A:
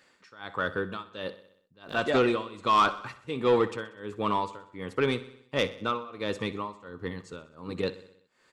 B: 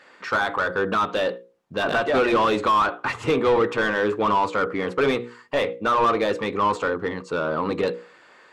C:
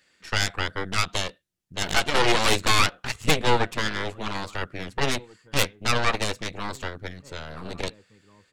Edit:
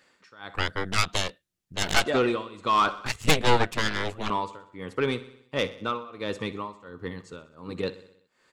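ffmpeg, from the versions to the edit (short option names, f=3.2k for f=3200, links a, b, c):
-filter_complex "[2:a]asplit=2[a][b];[0:a]asplit=3[c][d][e];[c]atrim=end=0.552[f];[a]atrim=start=0.548:end=2.062[g];[d]atrim=start=2.058:end=3.062[h];[b]atrim=start=3.058:end=4.302[i];[e]atrim=start=4.298[j];[f][g]acrossfade=d=0.004:c1=hsin:c2=hsin[k];[k][h]acrossfade=d=0.004:c1=hsin:c2=hsin[l];[l][i]acrossfade=d=0.004:c1=hsin:c2=hsin[m];[m][j]acrossfade=d=0.004:c1=hsin:c2=hsin"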